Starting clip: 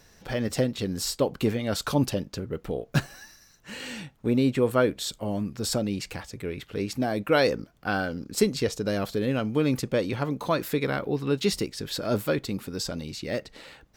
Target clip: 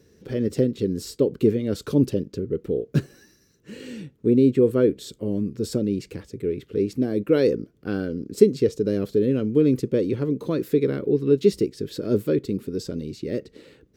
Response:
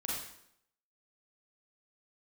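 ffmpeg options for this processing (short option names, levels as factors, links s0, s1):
-af "highpass=71,lowshelf=f=560:t=q:w=3:g=10,volume=0.422"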